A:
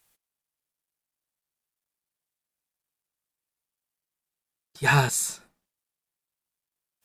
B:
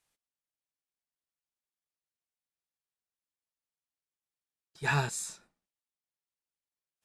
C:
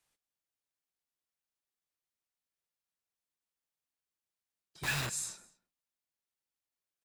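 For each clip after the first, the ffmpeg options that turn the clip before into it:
-af "lowpass=9.1k,volume=-8.5dB"
-filter_complex "[0:a]acrossover=split=120|1600|6600[a][b][c][d];[b]aeval=exprs='(mod(50.1*val(0)+1,2)-1)/50.1':c=same[e];[a][e][c][d]amix=inputs=4:normalize=0,aecho=1:1:210:0.0668"

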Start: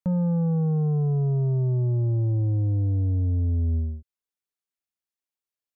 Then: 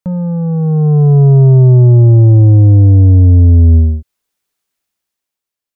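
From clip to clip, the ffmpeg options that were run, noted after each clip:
-af "dynaudnorm=f=200:g=9:m=11.5dB,volume=6.5dB"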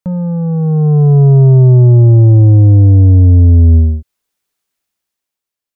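-af anull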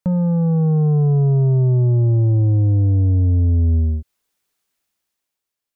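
-af "acompressor=threshold=-15dB:ratio=6"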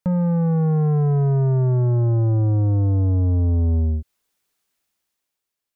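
-af "asoftclip=type=tanh:threshold=-15dB"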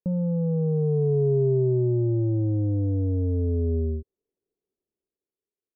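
-af "lowpass=f=410:t=q:w=4.9,volume=-7.5dB"

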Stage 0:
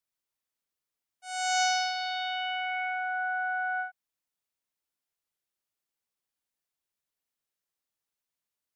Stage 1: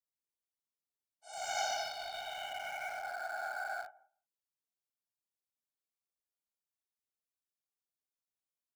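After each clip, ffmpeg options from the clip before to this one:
-filter_complex "[0:a]asplit=2[a][b];[b]adelay=173,lowpass=f=1.2k:p=1,volume=-19dB,asplit=2[c][d];[d]adelay=173,lowpass=f=1.2k:p=1,volume=0.15[e];[a][c][e]amix=inputs=3:normalize=0,afftfilt=real='hypot(re,im)*cos(2*PI*random(0))':imag='hypot(re,im)*sin(2*PI*random(1))':win_size=512:overlap=0.75,acrossover=split=1400|2800|4200[f][g][h][i];[g]aeval=exprs='val(0)*gte(abs(val(0)),0.00596)':c=same[j];[f][j][h][i]amix=inputs=4:normalize=0,volume=-3.5dB"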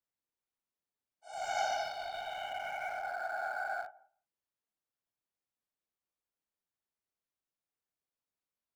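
-af "highshelf=f=2.8k:g=-11,volume=4dB"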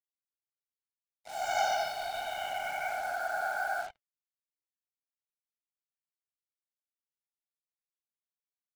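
-af "acrusher=bits=7:mix=0:aa=0.5,flanger=delay=3.1:depth=3.8:regen=-74:speed=1.3:shape=sinusoidal,volume=8.5dB"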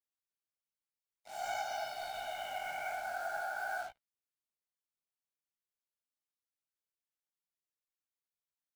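-af "acrusher=bits=5:mode=log:mix=0:aa=0.000001,alimiter=limit=-23dB:level=0:latency=1:release=319,flanger=delay=15:depth=7.8:speed=0.51,volume=-2dB"

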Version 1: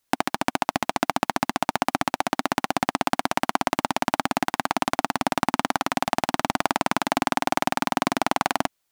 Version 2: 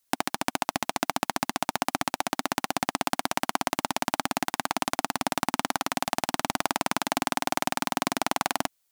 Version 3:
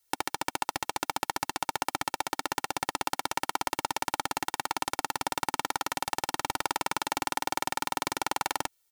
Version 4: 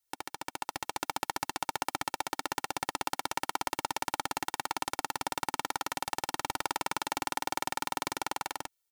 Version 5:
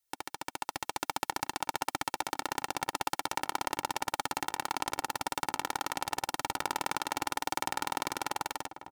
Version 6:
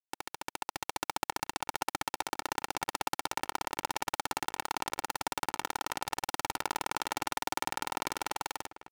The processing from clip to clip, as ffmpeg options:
-af "highshelf=f=4k:g=8.5,volume=-5dB"
-filter_complex "[0:a]aecho=1:1:2.2:0.93,asplit=2[a][b];[b]alimiter=limit=-12dB:level=0:latency=1,volume=1.5dB[c];[a][c]amix=inputs=2:normalize=0,volume=-8.5dB"
-af "dynaudnorm=f=130:g=11:m=11.5dB,volume=-9dB"
-filter_complex "[0:a]asplit=2[a][b];[b]adelay=1190,lowpass=f=1.4k:p=1,volume=-11.5dB,asplit=2[c][d];[d]adelay=1190,lowpass=f=1.4k:p=1,volume=0.43,asplit=2[e][f];[f]adelay=1190,lowpass=f=1.4k:p=1,volume=0.43,asplit=2[g][h];[h]adelay=1190,lowpass=f=1.4k:p=1,volume=0.43[i];[a][c][e][g][i]amix=inputs=5:normalize=0"
-af "aeval=exprs='sgn(val(0))*max(abs(val(0))-0.00562,0)':c=same"

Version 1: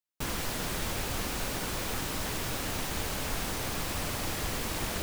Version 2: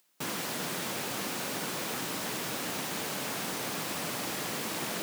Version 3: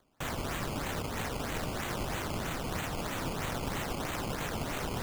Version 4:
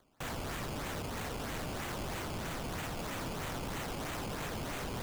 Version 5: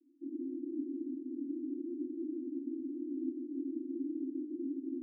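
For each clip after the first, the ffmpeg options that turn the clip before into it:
-af "highpass=f=150:w=0.5412,highpass=f=150:w=1.3066,acompressor=mode=upward:threshold=-53dB:ratio=2.5"
-af "acrusher=samples=15:mix=1:aa=0.000001:lfo=1:lforange=15:lforate=3.1,afreqshift=-300"
-af "asoftclip=type=tanh:threshold=-36dB,volume=1dB"
-af "asuperpass=centerf=300:order=12:qfactor=3,volume=11dB"

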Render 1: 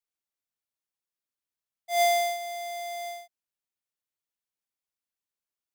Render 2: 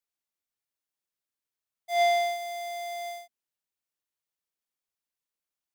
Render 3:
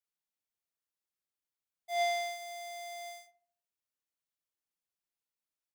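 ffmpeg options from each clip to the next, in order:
-filter_complex "[0:a]bandreject=f=50:t=h:w=6,bandreject=f=100:t=h:w=6,bandreject=f=150:t=h:w=6,bandreject=f=200:t=h:w=6,bandreject=f=250:t=h:w=6,acrossover=split=5000[a][b];[b]acompressor=threshold=-43dB:ratio=4:attack=1:release=60[c];[a][c]amix=inputs=2:normalize=0"
-filter_complex "[0:a]asplit=2[a][b];[b]adelay=41,volume=-10.5dB[c];[a][c]amix=inputs=2:normalize=0,asplit=2[d][e];[e]adelay=73,lowpass=f=870:p=1,volume=-8dB,asplit=2[f][g];[g]adelay=73,lowpass=f=870:p=1,volume=0.51,asplit=2[h][i];[i]adelay=73,lowpass=f=870:p=1,volume=0.51,asplit=2[j][k];[k]adelay=73,lowpass=f=870:p=1,volume=0.51,asplit=2[l][m];[m]adelay=73,lowpass=f=870:p=1,volume=0.51,asplit=2[n][o];[o]adelay=73,lowpass=f=870:p=1,volume=0.51[p];[d][f][h][j][l][n][p]amix=inputs=7:normalize=0,volume=-5.5dB"

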